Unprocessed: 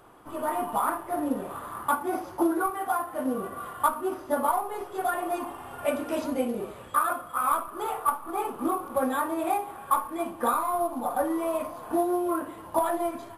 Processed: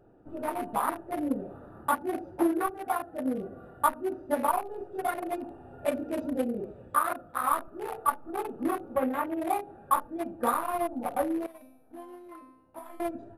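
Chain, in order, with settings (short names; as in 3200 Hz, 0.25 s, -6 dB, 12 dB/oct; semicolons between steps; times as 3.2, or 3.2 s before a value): Wiener smoothing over 41 samples; 8.95–9.4 band shelf 6400 Hz -10 dB; 11.46–13 resonator 260 Hz, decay 0.81 s, mix 90%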